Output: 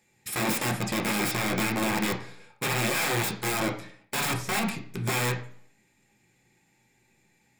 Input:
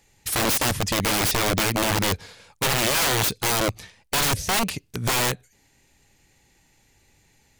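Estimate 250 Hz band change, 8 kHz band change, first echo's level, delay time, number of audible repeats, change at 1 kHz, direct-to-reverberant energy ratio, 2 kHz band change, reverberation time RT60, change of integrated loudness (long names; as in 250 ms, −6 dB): −1.0 dB, −8.0 dB, no echo audible, no echo audible, no echo audible, −5.0 dB, 0.0 dB, −3.0 dB, 0.55 s, −5.5 dB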